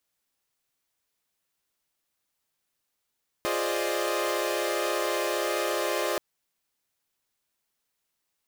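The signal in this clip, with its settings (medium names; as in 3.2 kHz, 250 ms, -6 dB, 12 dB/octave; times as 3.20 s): chord F4/G#4/C5/D5/D#5 saw, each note -30 dBFS 2.73 s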